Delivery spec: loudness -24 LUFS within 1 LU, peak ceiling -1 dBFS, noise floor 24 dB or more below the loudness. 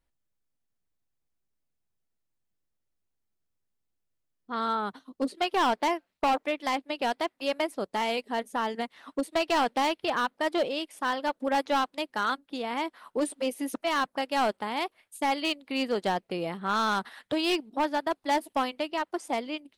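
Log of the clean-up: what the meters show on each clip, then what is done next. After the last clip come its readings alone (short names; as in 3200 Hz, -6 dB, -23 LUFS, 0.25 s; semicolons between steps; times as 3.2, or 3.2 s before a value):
clipped 1.2%; flat tops at -20.5 dBFS; loudness -29.5 LUFS; peak -20.5 dBFS; loudness target -24.0 LUFS
-> clip repair -20.5 dBFS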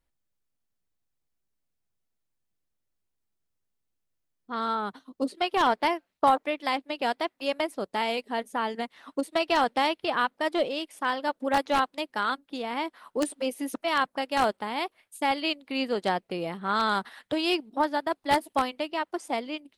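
clipped 0.0%; loudness -28.5 LUFS; peak -11.5 dBFS; loudness target -24.0 LUFS
-> gain +4.5 dB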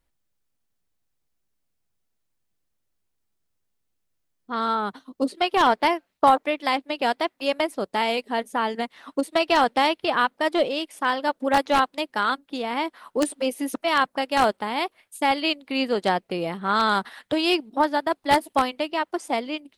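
loudness -24.0 LUFS; peak -7.0 dBFS; noise floor -75 dBFS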